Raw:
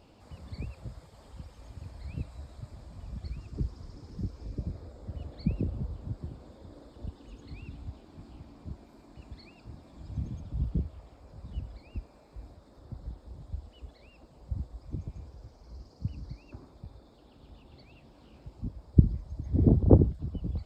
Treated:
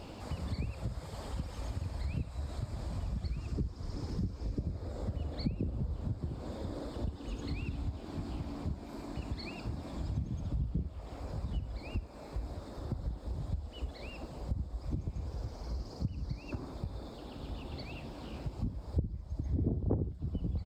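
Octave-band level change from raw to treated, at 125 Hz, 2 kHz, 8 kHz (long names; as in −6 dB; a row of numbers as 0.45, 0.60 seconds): −4.5 dB, +7.5 dB, can't be measured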